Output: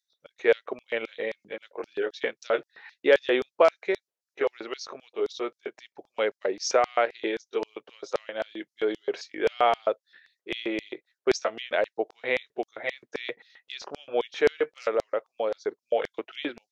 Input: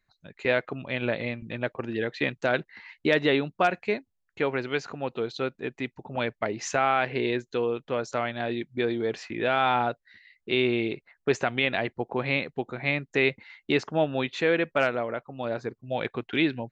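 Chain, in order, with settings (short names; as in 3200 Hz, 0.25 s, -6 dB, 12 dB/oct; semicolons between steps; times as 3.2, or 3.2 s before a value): delay-line pitch shifter -1.5 st; LFO high-pass square 3.8 Hz 480–5100 Hz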